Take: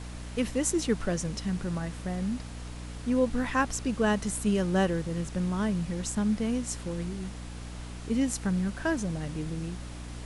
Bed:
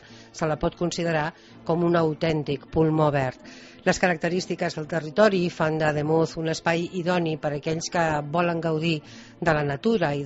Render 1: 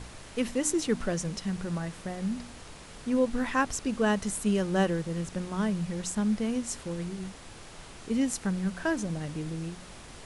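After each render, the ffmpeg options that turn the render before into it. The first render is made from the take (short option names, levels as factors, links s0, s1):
-af "bandreject=f=60:t=h:w=4,bandreject=f=120:t=h:w=4,bandreject=f=180:t=h:w=4,bandreject=f=240:t=h:w=4,bandreject=f=300:t=h:w=4"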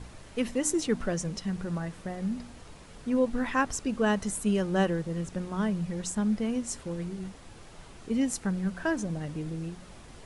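-af "afftdn=nr=6:nf=-47"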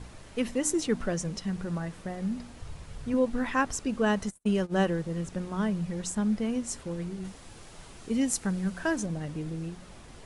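-filter_complex "[0:a]asettb=1/sr,asplit=3[s0][s1][s2];[s0]atrim=end=2.614[s3];[s1]atrim=start=2.61:end=3.14,asetpts=PTS-STARTPTS,afade=t=in:d=0.004:c=qsin,afade=t=out:st=0.526:d=0.004:c=qsin,lowshelf=f=160:t=q:w=1.5:g=9[s4];[s2]atrim=start=3.136[s5];[s3][s4]acrossfade=d=0.004:c1=hsin:c2=qsin[s6];[s6][s5]acrossfade=d=0.004:c1=qsin:c2=hsin,asplit=3[s7][s8][s9];[s7]afade=t=out:st=4.26:d=0.02[s10];[s8]agate=range=0.00562:threshold=0.0282:ratio=16:release=100:detection=peak,afade=t=in:st=4.26:d=0.02,afade=t=out:st=4.79:d=0.02[s11];[s9]afade=t=in:st=4.79:d=0.02[s12];[s10][s11][s12]amix=inputs=3:normalize=0,asettb=1/sr,asplit=3[s13][s14][s15];[s13]atrim=end=7.244[s16];[s14]atrim=start=7.24:end=9.06,asetpts=PTS-STARTPTS,afade=t=in:d=0.004:c=qsin,afade=t=out:st=1.816:d=0.004:c=qsin,highshelf=f=4300:g=6[s17];[s15]atrim=start=9.056[s18];[s16][s17]acrossfade=d=0.004:c1=hsin:c2=qsin[s19];[s19][s18]acrossfade=d=0.004:c1=qsin:c2=hsin"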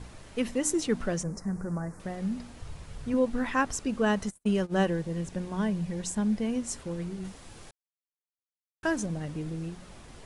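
-filter_complex "[0:a]asettb=1/sr,asplit=3[s0][s1][s2];[s0]atrim=end=1.234[s3];[s1]atrim=start=1.23:end=2,asetpts=PTS-STARTPTS,afade=t=in:d=0.004:c=qsin,afade=t=out:st=0.766:d=0.004:c=qsin,asuperstop=centerf=3200:order=4:qfactor=0.7[s4];[s2]atrim=start=1.996[s5];[s3][s4]acrossfade=d=0.004:c1=hsin:c2=qsin[s6];[s6][s5]acrossfade=d=0.004:c1=qsin:c2=hsin,asettb=1/sr,asplit=3[s7][s8][s9];[s7]atrim=end=4.834[s10];[s8]atrim=start=4.83:end=6.57,asetpts=PTS-STARTPTS,afade=t=in:d=0.004:c=qsin,afade=t=out:st=1.736:d=0.004:c=qsin,bandreject=f=1300:w=7.3[s11];[s9]atrim=start=6.566[s12];[s10][s11]acrossfade=d=0.004:c1=hsin:c2=qsin[s13];[s13][s12]acrossfade=d=0.004:c1=qsin:c2=hsin,asplit=3[s14][s15][s16];[s14]atrim=end=7.71,asetpts=PTS-STARTPTS,afade=t=out:st=7.706:d=0.004:c=hsin[s17];[s15]atrim=start=7.71:end=8.83,asetpts=PTS-STARTPTS,volume=0[s18];[s16]atrim=start=8.83,asetpts=PTS-STARTPTS,afade=t=in:d=0.004:c=hsin[s19];[s17][s18][s19]concat=n=3:v=0:a=1"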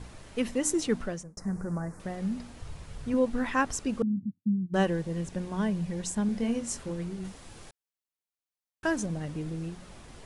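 -filter_complex "[0:a]asettb=1/sr,asplit=3[s0][s1][s2];[s0]atrim=end=4.024[s3];[s1]atrim=start=4.02:end=4.74,asetpts=PTS-STARTPTS,afade=t=in:d=0.004:c=qsin,afade=t=out:st=0.716:d=0.004:c=qsin,asuperpass=centerf=170:order=12:qfactor=0.91[s4];[s2]atrim=start=4.736[s5];[s3][s4]acrossfade=d=0.004:c1=hsin:c2=qsin[s6];[s6][s5]acrossfade=d=0.004:c1=qsin:c2=hsin,asettb=1/sr,asplit=3[s7][s8][s9];[s7]atrim=end=6.264[s10];[s8]atrim=start=6.26:end=6.91,asetpts=PTS-STARTPTS,afade=t=in:d=0.004:c=qsin,afade=t=out:st=0.646:d=0.004:c=qsin,asplit=2[s11][s12];[s12]adelay=26,volume=0.501[s13];[s11][s13]amix=inputs=2:normalize=0,atrim=end_sample=28665[s14];[s9]atrim=start=6.906[s15];[s10][s14]acrossfade=d=0.004:c1=hsin:c2=qsin[s16];[s16][s15]acrossfade=d=0.004:c1=qsin:c2=hsin,asplit=2[s17][s18];[s17]atrim=end=1.37,asetpts=PTS-STARTPTS,afade=t=out:st=0.93:d=0.44[s19];[s18]atrim=start=1.37,asetpts=PTS-STARTPTS,afade=t=in:d=0.004:c=hsin[s20];[s19][s20]concat=n=2:v=0:a=1"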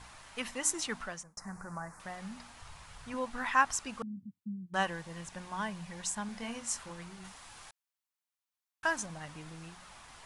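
-af "lowshelf=f=630:t=q:w=1.5:g=-12"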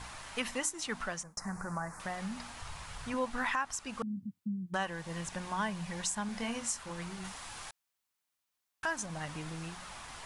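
-filter_complex "[0:a]asplit=2[s0][s1];[s1]acompressor=threshold=0.00708:ratio=6,volume=1.06[s2];[s0][s2]amix=inputs=2:normalize=0,alimiter=limit=0.075:level=0:latency=1:release=322"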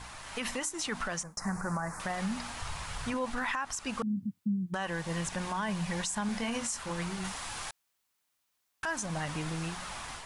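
-af "alimiter=level_in=2.11:limit=0.0631:level=0:latency=1:release=49,volume=0.473,dynaudnorm=f=220:g=3:m=2"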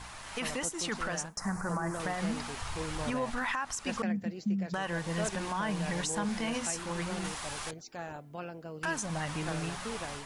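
-filter_complex "[1:a]volume=0.119[s0];[0:a][s0]amix=inputs=2:normalize=0"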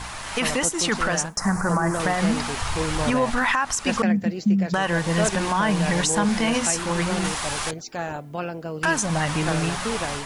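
-af "volume=3.76"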